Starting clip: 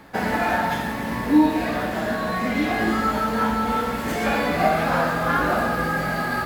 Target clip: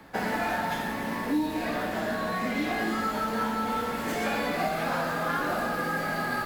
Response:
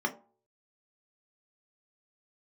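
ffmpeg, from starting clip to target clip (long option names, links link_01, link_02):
-filter_complex "[0:a]acrossover=split=160|3000[link_01][link_02][link_03];[link_02]acompressor=threshold=-22dB:ratio=6[link_04];[link_01][link_04][link_03]amix=inputs=3:normalize=0,acrossover=split=160[link_05][link_06];[link_05]aeval=exprs='0.0112*(abs(mod(val(0)/0.0112+3,4)-2)-1)':channel_layout=same[link_07];[link_07][link_06]amix=inputs=2:normalize=0,volume=-3.5dB"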